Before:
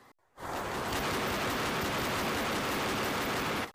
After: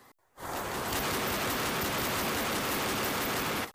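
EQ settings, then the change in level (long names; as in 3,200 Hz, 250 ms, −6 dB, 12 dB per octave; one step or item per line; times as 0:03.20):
high-shelf EQ 7,600 Hz +10.5 dB
0.0 dB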